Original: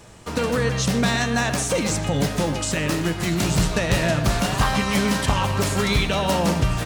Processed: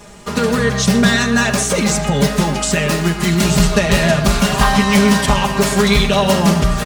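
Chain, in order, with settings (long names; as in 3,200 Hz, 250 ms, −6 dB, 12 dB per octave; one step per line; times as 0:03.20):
comb filter 4.9 ms, depth 91%
level +4.5 dB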